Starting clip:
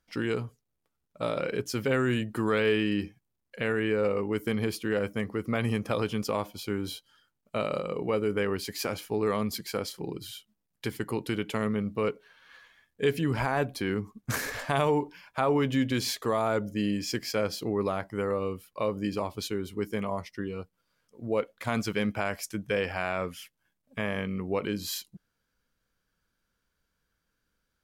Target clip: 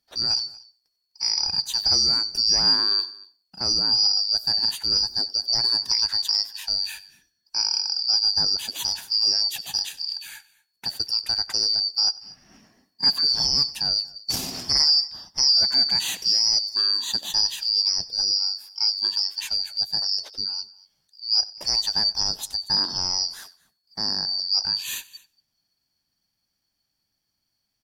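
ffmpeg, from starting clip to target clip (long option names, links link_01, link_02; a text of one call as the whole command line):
ffmpeg -i in.wav -filter_complex "[0:a]afftfilt=real='real(if(lt(b,272),68*(eq(floor(b/68),0)*1+eq(floor(b/68),1)*2+eq(floor(b/68),2)*3+eq(floor(b/68),3)*0)+mod(b,68),b),0)':imag='imag(if(lt(b,272),68*(eq(floor(b/68),0)*1+eq(floor(b/68),1)*2+eq(floor(b/68),2)*3+eq(floor(b/68),3)*0)+mod(b,68),b),0)':win_size=2048:overlap=0.75,highshelf=frequency=12000:gain=6.5,asplit=2[link_01][link_02];[link_02]aecho=0:1:93|186:0.0891|0.0241[link_03];[link_01][link_03]amix=inputs=2:normalize=0,adynamicequalizer=threshold=0.0141:dfrequency=5400:dqfactor=0.88:tfrequency=5400:tqfactor=0.88:attack=5:release=100:ratio=0.375:range=3:mode=boostabove:tftype=bell,asplit=2[link_04][link_05];[link_05]aecho=0:1:234:0.075[link_06];[link_04][link_06]amix=inputs=2:normalize=0" out.wav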